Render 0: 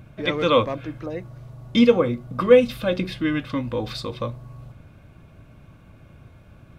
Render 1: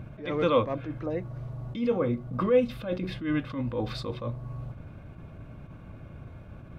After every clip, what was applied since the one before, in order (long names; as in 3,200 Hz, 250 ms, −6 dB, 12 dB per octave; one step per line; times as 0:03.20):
high-shelf EQ 2,900 Hz −12 dB
downward compressor 1.5 to 1, threshold −37 dBFS, peak gain reduction 10.5 dB
level that may rise only so fast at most 120 dB per second
level +4 dB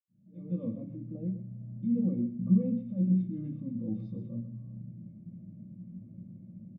fade in at the beginning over 0.83 s
single-tap delay 126 ms −11.5 dB
convolution reverb, pre-delay 77 ms